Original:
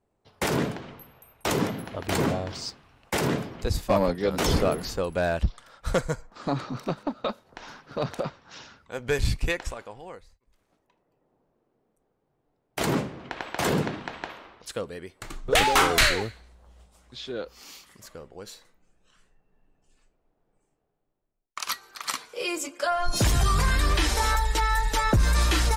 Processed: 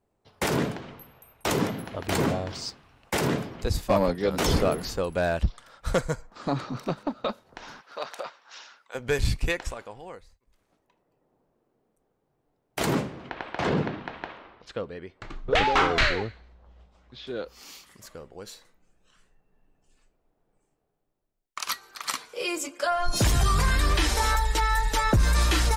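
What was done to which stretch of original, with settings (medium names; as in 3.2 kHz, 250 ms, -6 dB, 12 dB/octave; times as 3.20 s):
7.81–8.95 s: high-pass 740 Hz
13.30–17.27 s: distance through air 180 m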